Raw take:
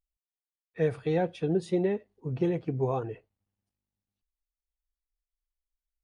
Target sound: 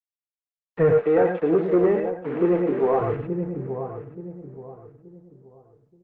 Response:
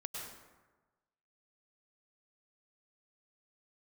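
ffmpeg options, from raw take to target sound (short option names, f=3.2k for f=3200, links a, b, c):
-filter_complex "[0:a]asplit=2[a][b];[b]adelay=28,volume=-9dB[c];[a][c]amix=inputs=2:normalize=0,acrusher=bits=6:mix=0:aa=0.000001,asplit=2[d][e];[e]adelay=877,lowpass=f=1.2k:p=1,volume=-10.5dB,asplit=2[f][g];[g]adelay=877,lowpass=f=1.2k:p=1,volume=0.33,asplit=2[h][i];[i]adelay=877,lowpass=f=1.2k:p=1,volume=0.33,asplit=2[j][k];[k]adelay=877,lowpass=f=1.2k:p=1,volume=0.33[l];[d][f][h][j][l]amix=inputs=5:normalize=0[m];[1:a]atrim=start_sample=2205,afade=t=out:st=0.16:d=0.01,atrim=end_sample=7497[n];[m][n]afir=irnorm=-1:irlink=0,acontrast=28,asplit=3[o][p][q];[o]afade=t=out:st=0.97:d=0.02[r];[p]highpass=f=230:w=0.5412,highpass=f=230:w=1.3066,afade=t=in:st=0.97:d=0.02,afade=t=out:st=2.99:d=0.02[s];[q]afade=t=in:st=2.99:d=0.02[t];[r][s][t]amix=inputs=3:normalize=0,acontrast=27,asoftclip=type=tanh:threshold=-14.5dB,lowpass=f=2k:w=0.5412,lowpass=f=2k:w=1.3066,volume=3.5dB" -ar 48000 -c:a libopus -b:a 24k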